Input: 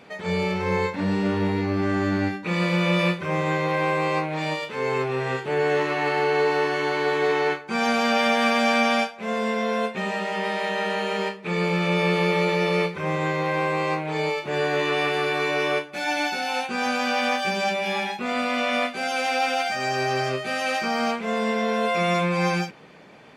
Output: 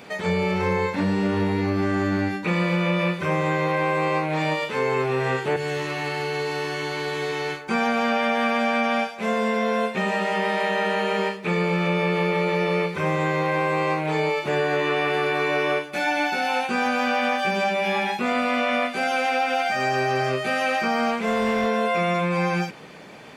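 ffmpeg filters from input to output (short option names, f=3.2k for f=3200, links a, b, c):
-filter_complex "[0:a]asettb=1/sr,asplit=3[a][b][c];[a]atrim=end=5.564[d];[b]atrim=start=5.56:end=7.68,asetpts=PTS-STARTPTS,afade=t=in:d=0.004:c=qsin,afade=t=out:st=2.116:d=0.004:c=qsin,acrossover=split=180|3000[e][f][g];[f]acompressor=threshold=-41dB:ratio=2:attack=3.2:release=140:knee=2.83:detection=peak[h];[e][h][g]amix=inputs=3:normalize=0[i];[c]atrim=start=7.676[j];[d][i]acrossfade=d=0.004:c1=hsin:c2=qsin[k];[k][j]acrossfade=d=0.004:c1=qsin:c2=hsin,asplit=3[l][m][n];[l]afade=t=out:st=21.11:d=0.02[o];[m]asoftclip=type=hard:threshold=-20.5dB,afade=t=in:st=21.11:d=0.02,afade=t=out:st=21.66:d=0.02[p];[n]afade=t=in:st=21.66:d=0.02[q];[o][p][q]amix=inputs=3:normalize=0,acrossover=split=2900[r][s];[s]acompressor=threshold=-46dB:ratio=4:attack=1:release=60[t];[r][t]amix=inputs=2:normalize=0,highshelf=f=6.4k:g=8.5,acompressor=threshold=-24dB:ratio=6,volume=5dB"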